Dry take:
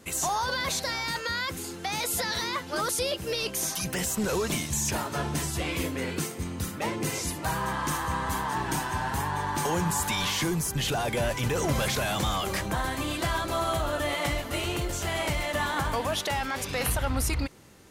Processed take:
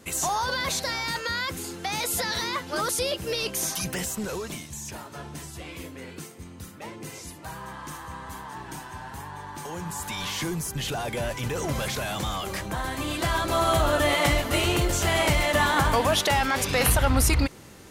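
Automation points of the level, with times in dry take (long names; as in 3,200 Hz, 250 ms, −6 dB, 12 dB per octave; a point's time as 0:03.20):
0:03.82 +1.5 dB
0:04.71 −9 dB
0:09.65 −9 dB
0:10.41 −2 dB
0:12.68 −2 dB
0:13.82 +6.5 dB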